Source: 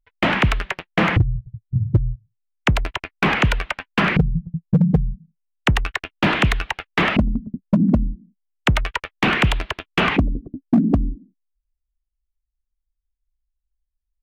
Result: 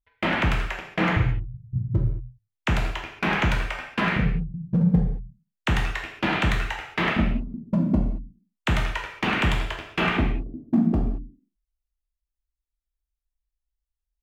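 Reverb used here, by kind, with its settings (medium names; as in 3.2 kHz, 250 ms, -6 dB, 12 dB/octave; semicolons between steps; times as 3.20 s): gated-style reverb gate 250 ms falling, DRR -1.5 dB; trim -8.5 dB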